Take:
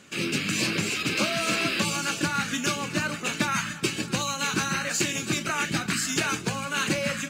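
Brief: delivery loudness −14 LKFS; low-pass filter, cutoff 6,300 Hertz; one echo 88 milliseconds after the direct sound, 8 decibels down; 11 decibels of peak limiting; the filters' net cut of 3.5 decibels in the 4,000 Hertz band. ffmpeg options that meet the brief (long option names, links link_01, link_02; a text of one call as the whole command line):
ffmpeg -i in.wav -af "lowpass=6300,equalizer=frequency=4000:width_type=o:gain=-4,alimiter=limit=-23.5dB:level=0:latency=1,aecho=1:1:88:0.398,volume=17.5dB" out.wav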